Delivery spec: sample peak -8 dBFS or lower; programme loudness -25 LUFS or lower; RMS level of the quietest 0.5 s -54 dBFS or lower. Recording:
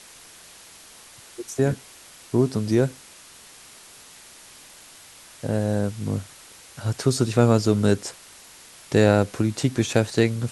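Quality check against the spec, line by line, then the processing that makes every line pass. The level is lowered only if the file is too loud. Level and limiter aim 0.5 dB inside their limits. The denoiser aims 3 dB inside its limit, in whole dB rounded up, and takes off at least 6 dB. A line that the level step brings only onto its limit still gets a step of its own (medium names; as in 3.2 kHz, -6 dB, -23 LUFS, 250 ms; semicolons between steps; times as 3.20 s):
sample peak -4.0 dBFS: fail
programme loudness -23.0 LUFS: fail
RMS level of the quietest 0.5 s -47 dBFS: fail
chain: noise reduction 8 dB, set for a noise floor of -47 dBFS; trim -2.5 dB; peak limiter -8.5 dBFS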